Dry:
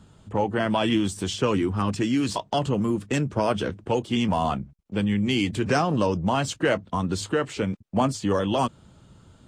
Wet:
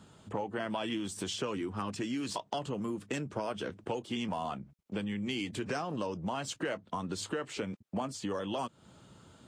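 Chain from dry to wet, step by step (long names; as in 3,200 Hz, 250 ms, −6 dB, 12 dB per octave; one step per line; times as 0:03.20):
high-pass filter 230 Hz 6 dB per octave
downward compressor 4 to 1, threshold −34 dBFS, peak gain reduction 13.5 dB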